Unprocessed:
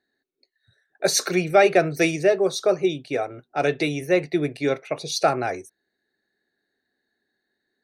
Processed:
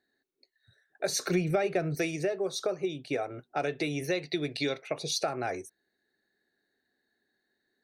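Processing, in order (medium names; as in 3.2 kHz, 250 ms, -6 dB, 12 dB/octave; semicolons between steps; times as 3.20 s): 4.04–4.82 s: peaking EQ 4.1 kHz +13.5 dB 1 oct; compression 6:1, threshold -26 dBFS, peak gain reduction 14.5 dB; 1.09–1.95 s: bass shelf 220 Hz +11 dB; trim -1.5 dB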